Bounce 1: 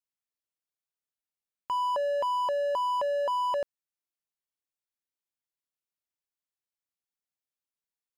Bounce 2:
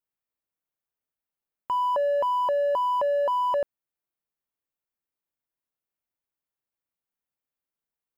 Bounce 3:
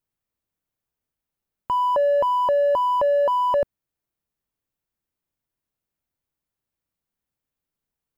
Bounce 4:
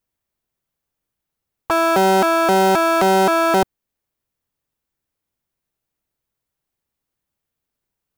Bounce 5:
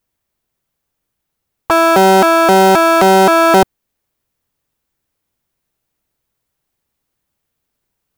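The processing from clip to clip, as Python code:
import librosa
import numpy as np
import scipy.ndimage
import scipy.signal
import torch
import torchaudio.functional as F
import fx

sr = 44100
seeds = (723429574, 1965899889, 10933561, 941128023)

y1 = fx.peak_eq(x, sr, hz=5800.0, db=-12.5, octaves=2.2)
y1 = y1 * 10.0 ** (5.0 / 20.0)
y2 = fx.low_shelf(y1, sr, hz=250.0, db=12.0)
y2 = y2 * 10.0 ** (3.0 / 20.0)
y3 = fx.cycle_switch(y2, sr, every=3, mode='inverted')
y3 = y3 * 10.0 ** (4.5 / 20.0)
y4 = fx.rider(y3, sr, range_db=10, speed_s=0.5)
y4 = y4 * 10.0 ** (7.0 / 20.0)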